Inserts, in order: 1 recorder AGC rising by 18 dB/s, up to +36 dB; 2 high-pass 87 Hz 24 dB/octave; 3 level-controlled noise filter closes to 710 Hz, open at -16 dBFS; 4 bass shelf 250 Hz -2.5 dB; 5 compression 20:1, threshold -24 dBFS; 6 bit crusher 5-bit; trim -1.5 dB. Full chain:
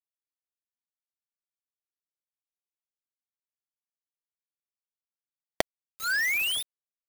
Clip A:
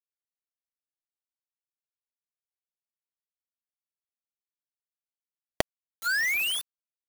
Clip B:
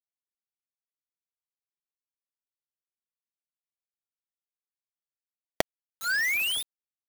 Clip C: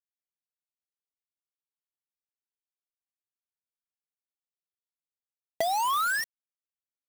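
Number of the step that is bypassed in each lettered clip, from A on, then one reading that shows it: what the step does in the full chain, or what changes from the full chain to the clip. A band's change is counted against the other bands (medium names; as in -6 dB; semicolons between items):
2, 125 Hz band +5.5 dB; 4, 125 Hz band +1.5 dB; 1, crest factor change -14.0 dB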